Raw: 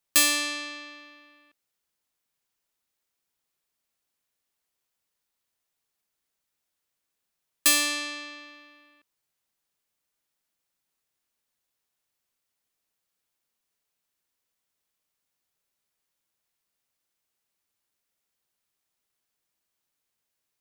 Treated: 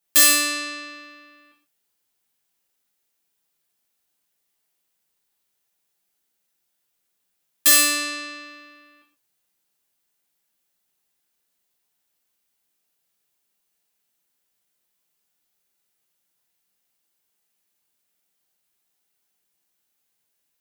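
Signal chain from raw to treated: high shelf 9600 Hz +5.5 dB; notch 1100 Hz, Q 23; non-linear reverb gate 0.17 s falling, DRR -3.5 dB; gain -1 dB

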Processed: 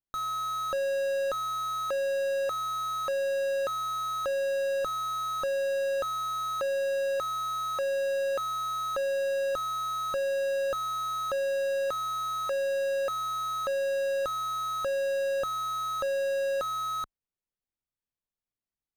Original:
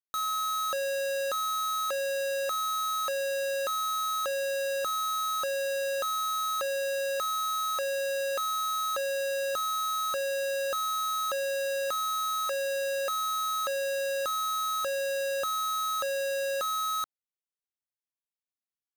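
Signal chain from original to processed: tilt -3 dB/oct

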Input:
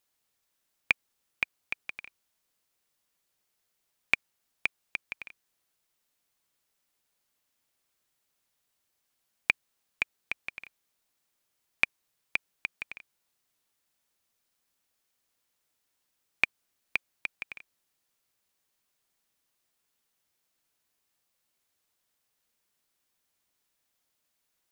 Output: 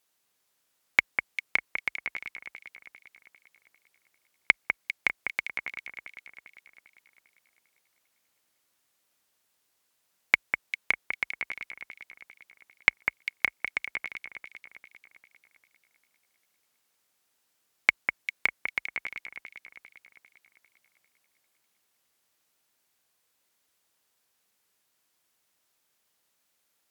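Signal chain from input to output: HPF 42 Hz 24 dB/oct; low shelf 160 Hz -6.5 dB; echo with dull and thin repeats by turns 0.183 s, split 2500 Hz, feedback 67%, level -5 dB; speed mistake 48 kHz file played as 44.1 kHz; gain +3.5 dB

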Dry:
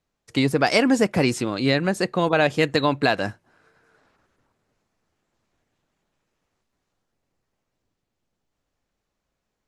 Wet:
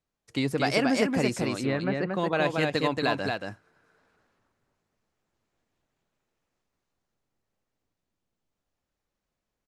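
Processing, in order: 1.61–2.12 LPF 2100 Hz 12 dB/oct; on a send: echo 0.229 s -3.5 dB; on the sum: gain -7 dB

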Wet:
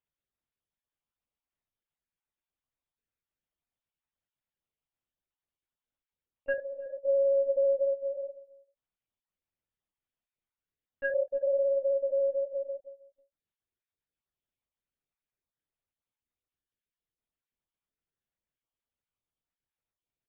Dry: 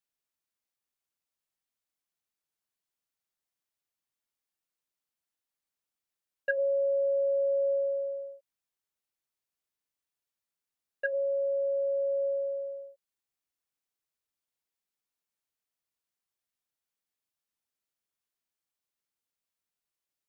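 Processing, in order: random spectral dropouts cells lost 24%; low shelf 500 Hz +9 dB; 6.53–7.02 negative-ratio compressor -34 dBFS, ratio -1; doubler 25 ms -11.5 dB; outdoor echo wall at 55 m, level -19 dB; LPC vocoder at 8 kHz pitch kept; gain -3 dB

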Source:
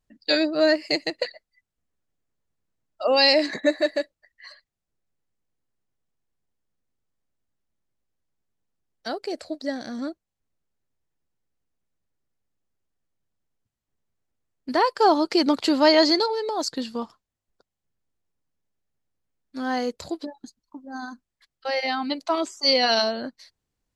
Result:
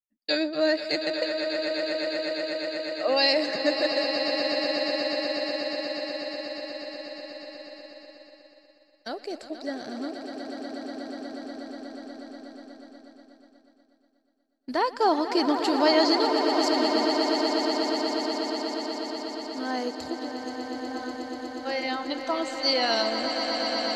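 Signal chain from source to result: swelling echo 0.121 s, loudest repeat 8, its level -10 dB; expander -37 dBFS; gain -4.5 dB

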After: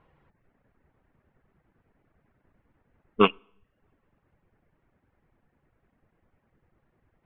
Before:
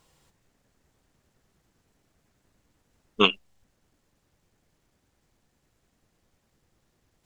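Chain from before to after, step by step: in parallel at -8 dB: short-mantissa float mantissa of 2-bit; on the sum: LPF 2200 Hz 24 dB/oct; two-slope reverb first 0.71 s, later 2.1 s, from -26 dB, DRR 18 dB; reverb removal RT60 0.54 s

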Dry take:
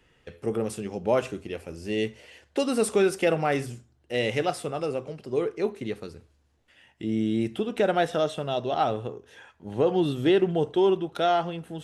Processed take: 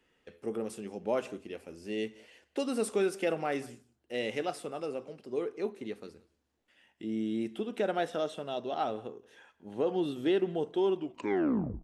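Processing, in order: tape stop at the end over 0.89 s; resonant low shelf 170 Hz -7 dB, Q 1.5; echo 0.175 s -23.5 dB; gain -8 dB

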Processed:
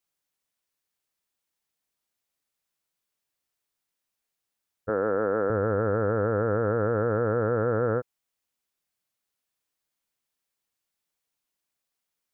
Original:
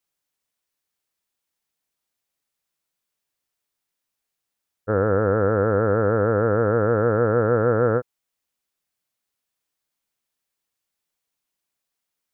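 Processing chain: 4.89–5.5 HPF 230 Hz 12 dB/oct; limiter -13.5 dBFS, peak gain reduction 5 dB; gain -2 dB

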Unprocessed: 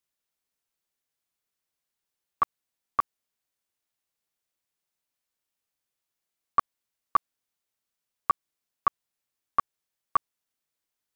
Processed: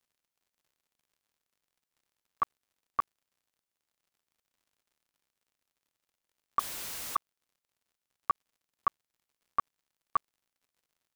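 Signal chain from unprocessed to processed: 6.59–7.16 infinite clipping; crackle 87/s -56 dBFS; gain -5 dB

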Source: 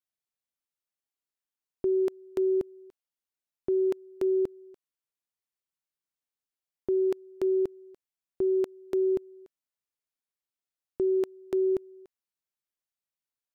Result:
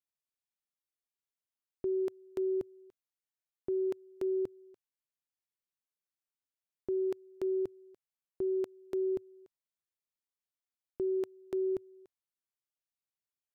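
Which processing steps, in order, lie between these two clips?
bell 110 Hz +3.5 dB 0.45 oct; gain -6.5 dB

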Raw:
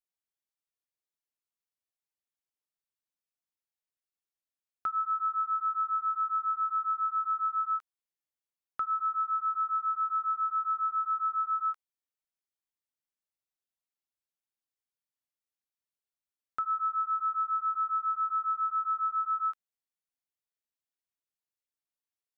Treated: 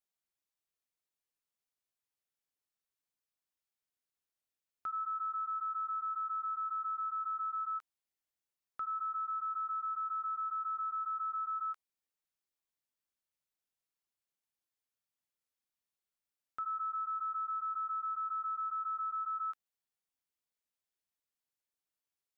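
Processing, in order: limiter -33 dBFS, peak gain reduction 8.5 dB

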